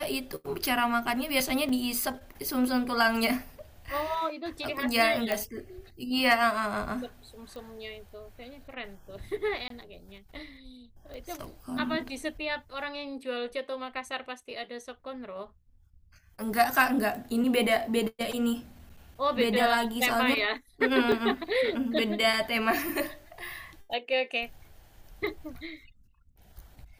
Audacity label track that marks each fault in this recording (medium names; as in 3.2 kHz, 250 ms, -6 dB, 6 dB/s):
1.690000	1.690000	dropout 2.9 ms
5.320000	5.320000	pop -14 dBFS
7.560000	7.560000	pop
9.680000	9.700000	dropout 23 ms
11.140000	11.140000	pop -30 dBFS
21.120000	21.120000	dropout 2.1 ms